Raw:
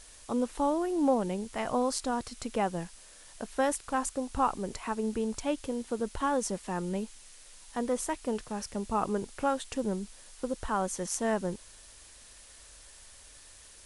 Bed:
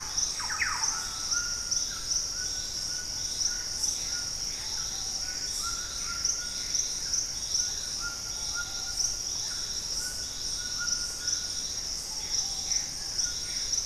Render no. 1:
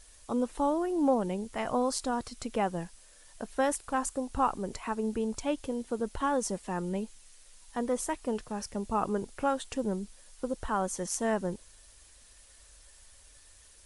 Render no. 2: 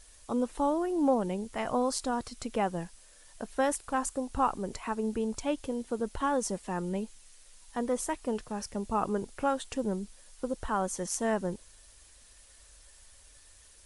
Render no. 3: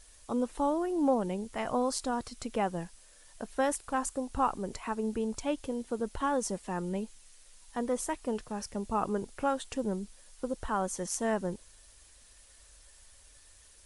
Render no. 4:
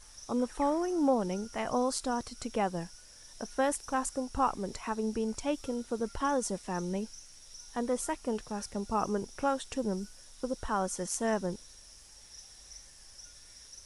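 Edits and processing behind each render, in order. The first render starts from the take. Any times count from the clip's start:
denoiser 6 dB, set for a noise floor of -53 dBFS
nothing audible
gain -1 dB
add bed -22 dB

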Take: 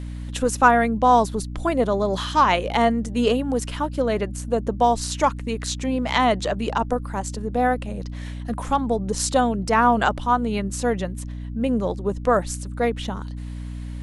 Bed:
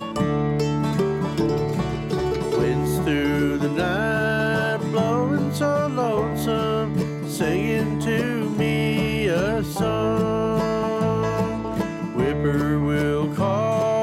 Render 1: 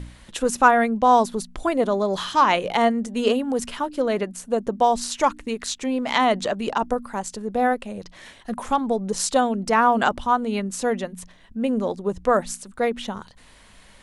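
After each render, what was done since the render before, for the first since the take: de-hum 60 Hz, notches 5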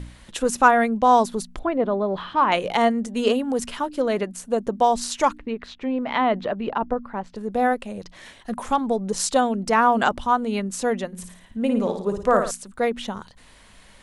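1.59–2.52 air absorption 420 m; 5.38–7.36 air absorption 360 m; 11.07–12.51 flutter echo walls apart 9.6 m, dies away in 0.51 s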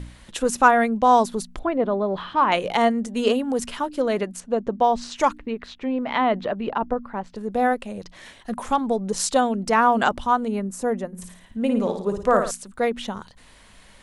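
4.4–5.16 air absorption 130 m; 10.48–11.22 bell 3600 Hz -13.5 dB 1.8 oct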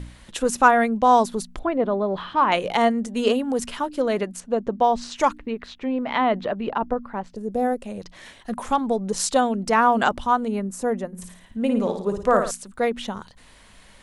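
7.32–7.84 band shelf 1900 Hz -10 dB 2.6 oct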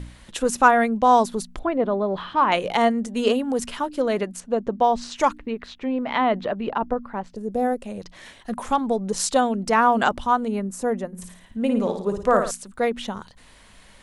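nothing audible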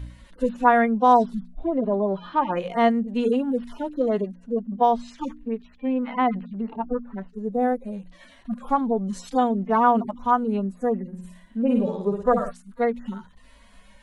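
median-filter separation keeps harmonic; tone controls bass +2 dB, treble -5 dB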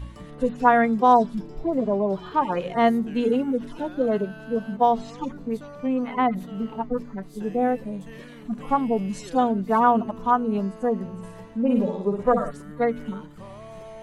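add bed -20.5 dB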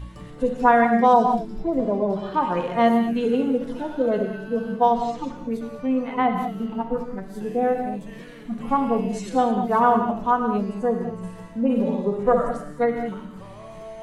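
non-linear reverb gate 0.24 s flat, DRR 4.5 dB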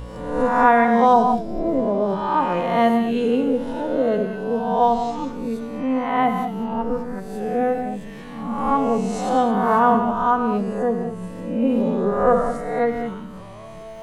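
spectral swells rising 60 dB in 0.99 s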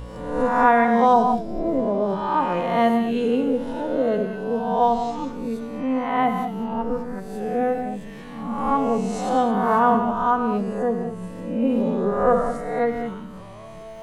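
gain -1.5 dB

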